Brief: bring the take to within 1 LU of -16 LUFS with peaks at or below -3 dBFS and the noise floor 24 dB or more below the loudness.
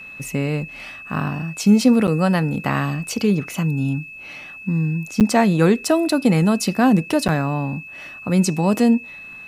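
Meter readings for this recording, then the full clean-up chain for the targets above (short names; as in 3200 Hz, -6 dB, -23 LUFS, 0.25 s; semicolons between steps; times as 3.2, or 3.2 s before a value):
dropouts 3; longest dropout 8.4 ms; steady tone 2600 Hz; tone level -35 dBFS; loudness -19.5 LUFS; peak -3.5 dBFS; loudness target -16.0 LUFS
-> interpolate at 2.07/5.2/7.28, 8.4 ms; notch 2600 Hz, Q 30; gain +3.5 dB; limiter -3 dBFS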